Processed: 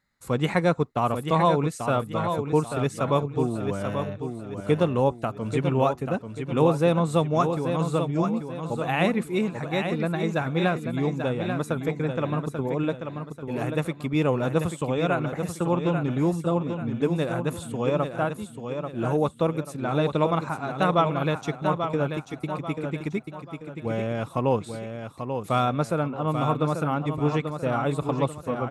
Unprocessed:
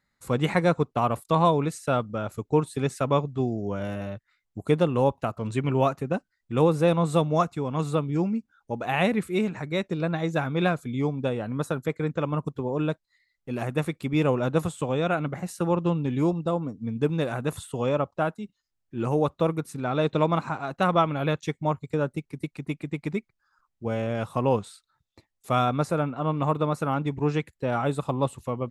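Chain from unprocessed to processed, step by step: feedback delay 838 ms, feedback 37%, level -7 dB

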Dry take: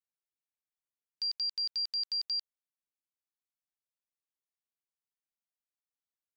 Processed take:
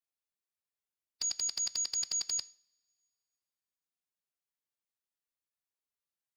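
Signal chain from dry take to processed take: formant-preserving pitch shift +6 st; two-slope reverb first 0.43 s, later 2.2 s, from -26 dB, DRR 15.5 dB

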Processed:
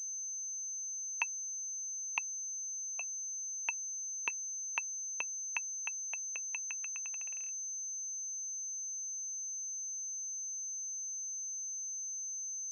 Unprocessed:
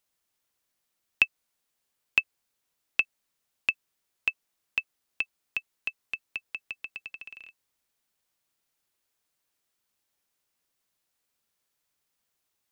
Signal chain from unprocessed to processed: 2.18–3.01 s: vowel filter a; LFO high-pass saw down 0.93 Hz 430–2200 Hz; peak limiter -9.5 dBFS, peak gain reduction 8 dB; class-D stage that switches slowly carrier 6.2 kHz; trim -6.5 dB

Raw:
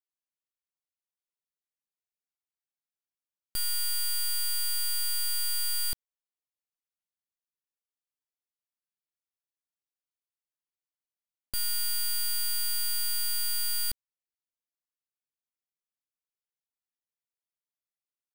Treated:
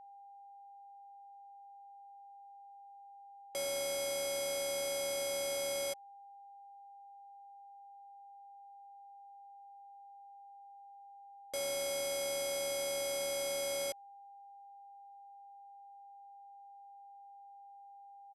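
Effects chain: in parallel at -10 dB: sample-and-hold 18×; on the sum: pitch shift -9.5 st; ring modulator 560 Hz; whistle 800 Hz -45 dBFS; trim -7 dB

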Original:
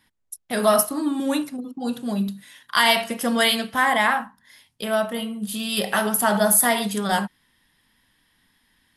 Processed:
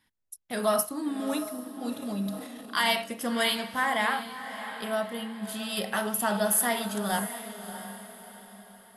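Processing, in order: echo that smears into a reverb 652 ms, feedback 41%, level -11 dB; 2.02–2.93 s: transient shaper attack -1 dB, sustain +7 dB; trim -7.5 dB

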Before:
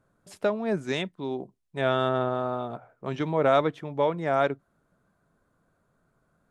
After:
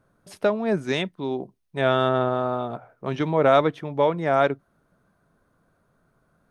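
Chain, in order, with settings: band-stop 7.4 kHz, Q 5.8; trim +4 dB

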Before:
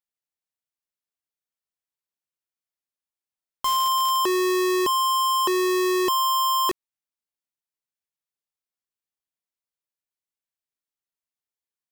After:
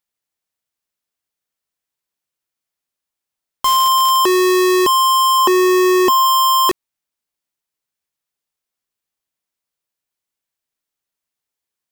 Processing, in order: 5.38–6.26 s: graphic EQ with 31 bands 250 Hz +9 dB, 800 Hz +7 dB, 4 kHz -7 dB, 10 kHz -5 dB; trim +8.5 dB

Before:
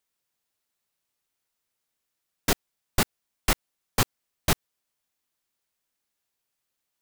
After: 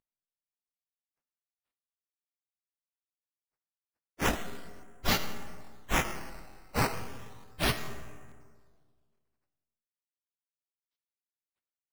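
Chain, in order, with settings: CVSD coder 32 kbps; treble shelf 2.4 kHz +10.5 dB; transient shaper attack -3 dB, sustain +6 dB; plain phase-vocoder stretch 1.7×; doubling 17 ms -10.5 dB; on a send at -8.5 dB: reverberation RT60 1.8 s, pre-delay 15 ms; on the sum: decimation with a swept rate 9×, swing 100% 0.34 Hz; crackling interface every 0.44 s, samples 1024, repeat, from 0.35 s

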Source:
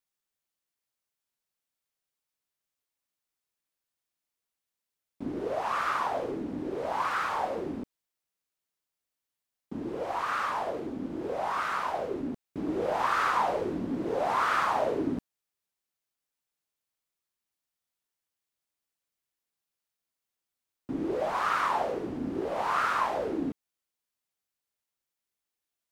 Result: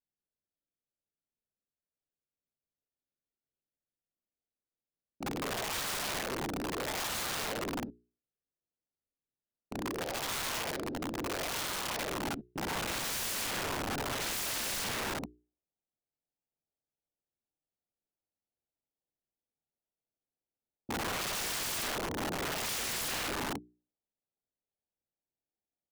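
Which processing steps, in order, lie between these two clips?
local Wiener filter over 41 samples; hum notches 60/120/180/240/300/360/420 Hz; saturation -24 dBFS, distortion -15 dB; low-pass sweep 5 kHz -> 960 Hz, 11.97–14.59 s; early reflections 51 ms -5.5 dB, 65 ms -8.5 dB; integer overflow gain 30.5 dB; tape noise reduction on one side only decoder only

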